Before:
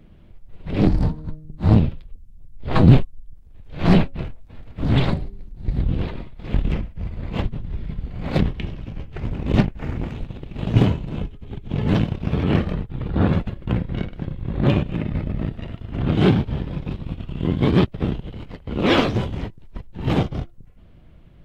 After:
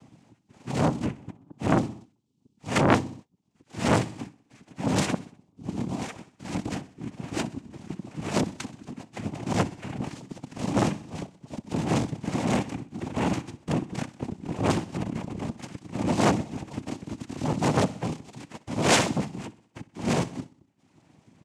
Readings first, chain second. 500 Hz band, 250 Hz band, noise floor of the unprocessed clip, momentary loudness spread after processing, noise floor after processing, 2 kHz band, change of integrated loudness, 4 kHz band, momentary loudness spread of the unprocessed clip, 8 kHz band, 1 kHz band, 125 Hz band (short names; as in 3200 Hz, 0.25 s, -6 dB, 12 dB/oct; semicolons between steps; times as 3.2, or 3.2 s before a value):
-3.5 dB, -6.0 dB, -46 dBFS, 17 LU, -67 dBFS, -1.0 dB, -6.5 dB, -2.0 dB, 17 LU, n/a, +1.0 dB, -10.5 dB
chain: reverb removal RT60 0.96 s; high shelf 3500 Hz +10 dB; noise vocoder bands 4; on a send: feedback echo 63 ms, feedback 54%, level -19 dB; on the sum: core saturation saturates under 1500 Hz; gain -1.5 dB